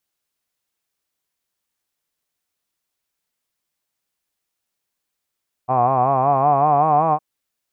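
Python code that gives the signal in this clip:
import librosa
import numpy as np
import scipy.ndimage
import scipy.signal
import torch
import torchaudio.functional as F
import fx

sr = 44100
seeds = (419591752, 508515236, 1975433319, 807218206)

y = fx.vowel(sr, seeds[0], length_s=1.51, word='hod', hz=123.0, glide_st=4.5, vibrato_hz=5.3, vibrato_st=0.9)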